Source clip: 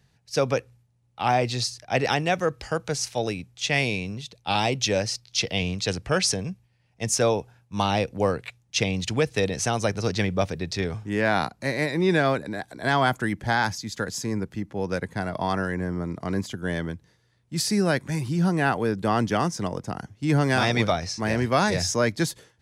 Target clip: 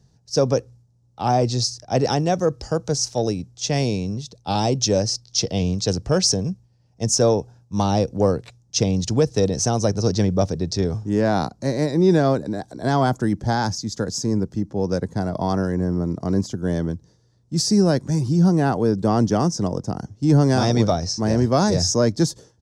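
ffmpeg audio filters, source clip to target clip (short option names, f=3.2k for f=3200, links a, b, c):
-af "firequalizer=gain_entry='entry(310,0);entry(2200,-19);entry(5500,1);entry(11000,-14)':delay=0.05:min_phase=1,acontrast=75"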